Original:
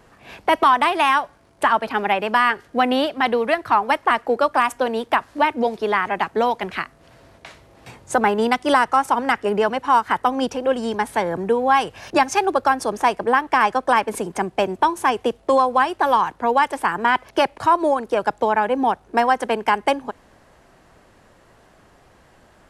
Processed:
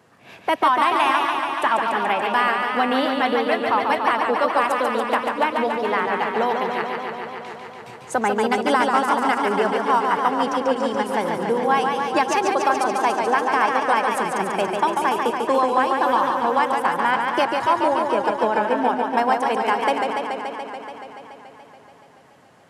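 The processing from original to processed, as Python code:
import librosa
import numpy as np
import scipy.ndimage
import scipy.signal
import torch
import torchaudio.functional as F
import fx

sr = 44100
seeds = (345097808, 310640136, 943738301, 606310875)

y = scipy.signal.sosfilt(scipy.signal.butter(4, 100.0, 'highpass', fs=sr, output='sos'), x)
y = fx.echo_warbled(y, sr, ms=143, feedback_pct=79, rate_hz=2.8, cents=96, wet_db=-4.5)
y = y * 10.0 ** (-3.5 / 20.0)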